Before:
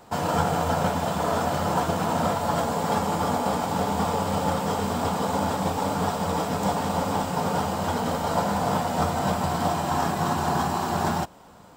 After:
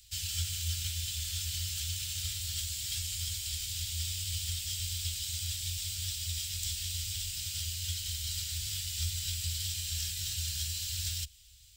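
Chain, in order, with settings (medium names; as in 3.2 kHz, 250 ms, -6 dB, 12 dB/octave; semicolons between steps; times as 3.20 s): inverse Chebyshev band-stop 210–1100 Hz, stop band 60 dB; peaking EQ 620 Hz +8 dB 1.5 oct; trim +3.5 dB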